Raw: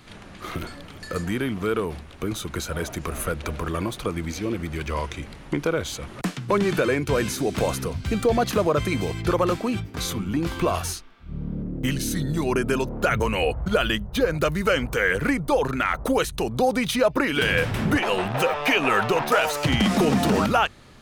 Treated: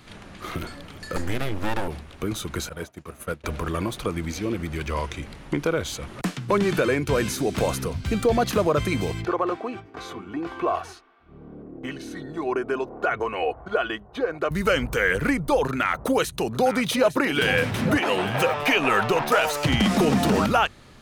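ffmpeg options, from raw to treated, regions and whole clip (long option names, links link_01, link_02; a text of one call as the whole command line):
ffmpeg -i in.wav -filter_complex "[0:a]asettb=1/sr,asplit=3[link_01][link_02][link_03];[link_01]atrim=end=1.164[link_04];[link_02]atrim=start=1.16:end=1.88,asetpts=PTS-STARTPTS,afade=type=in:duration=0.004:curve=qsin,afade=type=out:start_time=0.716:duration=0.004:curve=qsin,equalizer=frequency=100:width_type=o:width=0.7:gain=9.5,bandreject=frequency=310:width=7.9,aeval=exprs='abs(val(0))':channel_layout=same[link_05];[link_03]atrim=start=1.876[link_06];[link_04][link_05]acrossfade=duration=0.004:curve1=hsin:curve2=qsin[link_07];[link_07][link_06]acrossfade=duration=0.004:curve1=qsin:curve2=hsin,asettb=1/sr,asplit=3[link_08][link_09][link_10];[link_08]atrim=end=2.694[link_11];[link_09]atrim=start=2.69:end=3.44,asetpts=PTS-STARTPTS,afade=type=in:duration=0.004:curve=qsin,afade=type=out:start_time=0.746:duration=0.004:curve=qsin,highpass=71,agate=range=-33dB:threshold=-23dB:ratio=3:release=100:detection=peak[link_12];[link_10]atrim=start=3.436[link_13];[link_11][link_12]acrossfade=duration=0.004:curve1=hsin:curve2=qsin[link_14];[link_14][link_13]acrossfade=duration=0.004:curve1=qsin:curve2=hsin,asettb=1/sr,asplit=3[link_15][link_16][link_17];[link_15]atrim=end=9.254[link_18];[link_16]atrim=start=9.25:end=14.51,asetpts=PTS-STARTPTS,afade=type=in:duration=0.004:curve=qsin,afade=type=out:start_time=5.256:duration=0.004:curve=qsin,bandpass=frequency=800:width_type=q:width=0.79,aecho=1:1:2.7:0.43,atrim=end_sample=231966[link_19];[link_17]atrim=start=14.506[link_20];[link_18][link_19]acrossfade=duration=0.004:curve1=hsin:curve2=qsin[link_21];[link_21][link_20]acrossfade=duration=0.004:curve1=qsin:curve2=hsin,asettb=1/sr,asplit=3[link_22][link_23][link_24];[link_22]atrim=end=15.674[link_25];[link_23]atrim=start=15.67:end=18.64,asetpts=PTS-STARTPTS,afade=type=in:duration=0.004:curve=qsin,afade=type=out:start_time=2.966:duration=0.004:curve=qsin,highpass=86,aecho=1:1:858:0.266,atrim=end_sample=130977[link_26];[link_24]atrim=start=18.636[link_27];[link_25][link_26]acrossfade=duration=0.004:curve1=hsin:curve2=qsin[link_28];[link_28][link_27]acrossfade=duration=0.004:curve1=qsin:curve2=hsin" out.wav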